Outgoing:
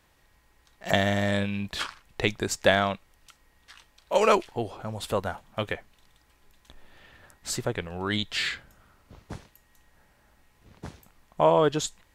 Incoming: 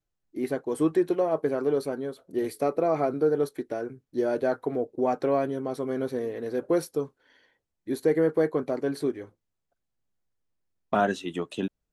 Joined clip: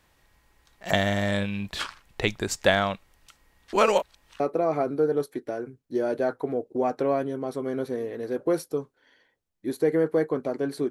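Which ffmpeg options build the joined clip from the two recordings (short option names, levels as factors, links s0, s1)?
-filter_complex "[0:a]apad=whole_dur=10.9,atrim=end=10.9,asplit=2[s0][s1];[s0]atrim=end=3.732[s2];[s1]atrim=start=3.728:end=4.402,asetpts=PTS-STARTPTS,areverse[s3];[1:a]atrim=start=2.628:end=9.13[s4];[s2][s3]acrossfade=d=0.004:c1=hsin:c2=hsin[s5];[s5][s4]acrossfade=d=0.004:c1=hsin:c2=hsin"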